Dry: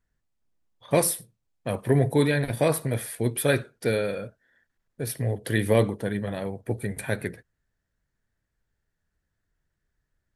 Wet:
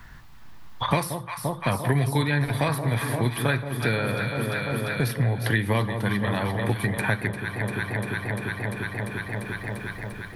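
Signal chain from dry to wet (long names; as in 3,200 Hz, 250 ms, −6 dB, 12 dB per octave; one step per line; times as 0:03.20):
octave-band graphic EQ 125/500/1,000/2,000/4,000/8,000 Hz +4/−8/+10/+3/+4/−7 dB
on a send: delay that swaps between a low-pass and a high-pass 173 ms, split 1,000 Hz, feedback 81%, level −10 dB
on the sum: multiband upward and downward compressor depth 100%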